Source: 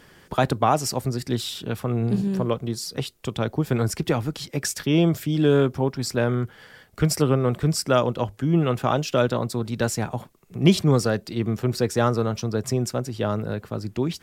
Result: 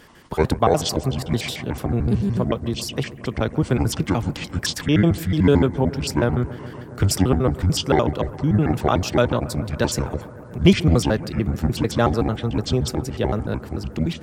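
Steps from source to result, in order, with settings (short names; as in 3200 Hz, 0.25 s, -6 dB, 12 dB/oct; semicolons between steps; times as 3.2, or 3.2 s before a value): trilling pitch shifter -8.5 st, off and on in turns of 74 ms; analogue delay 0.138 s, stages 2048, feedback 85%, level -19 dB; gain +3 dB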